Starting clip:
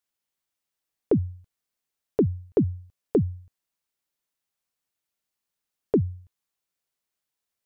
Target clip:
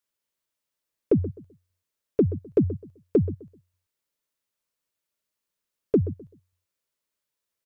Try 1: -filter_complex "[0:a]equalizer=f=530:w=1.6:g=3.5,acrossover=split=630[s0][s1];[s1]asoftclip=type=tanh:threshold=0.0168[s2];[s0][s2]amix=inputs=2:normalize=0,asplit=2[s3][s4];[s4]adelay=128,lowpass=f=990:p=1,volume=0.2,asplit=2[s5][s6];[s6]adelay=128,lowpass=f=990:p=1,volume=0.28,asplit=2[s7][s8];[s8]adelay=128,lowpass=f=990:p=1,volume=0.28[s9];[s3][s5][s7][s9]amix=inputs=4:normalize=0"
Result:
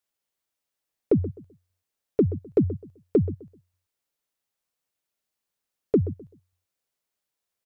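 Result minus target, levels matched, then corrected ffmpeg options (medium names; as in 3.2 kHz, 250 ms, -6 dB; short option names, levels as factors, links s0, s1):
1 kHz band +3.5 dB
-filter_complex "[0:a]asuperstop=centerf=760:order=8:qfactor=5.7,equalizer=f=530:w=1.6:g=3.5,acrossover=split=630[s0][s1];[s1]asoftclip=type=tanh:threshold=0.0168[s2];[s0][s2]amix=inputs=2:normalize=0,asplit=2[s3][s4];[s4]adelay=128,lowpass=f=990:p=1,volume=0.2,asplit=2[s5][s6];[s6]adelay=128,lowpass=f=990:p=1,volume=0.28,asplit=2[s7][s8];[s8]adelay=128,lowpass=f=990:p=1,volume=0.28[s9];[s3][s5][s7][s9]amix=inputs=4:normalize=0"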